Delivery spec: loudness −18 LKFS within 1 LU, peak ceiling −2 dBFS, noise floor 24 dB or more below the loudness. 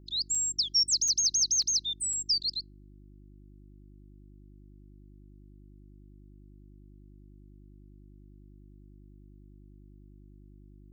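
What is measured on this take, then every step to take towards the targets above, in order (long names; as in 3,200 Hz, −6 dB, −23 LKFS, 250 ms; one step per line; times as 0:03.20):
number of dropouts 4; longest dropout 4.0 ms; mains hum 50 Hz; hum harmonics up to 350 Hz; level of the hum −50 dBFS; integrated loudness −25.5 LKFS; sample peak −18.5 dBFS; target loudness −18.0 LKFS
→ repair the gap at 0:00.35/0:01.08/0:01.62/0:02.13, 4 ms
hum removal 50 Hz, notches 7
level +7.5 dB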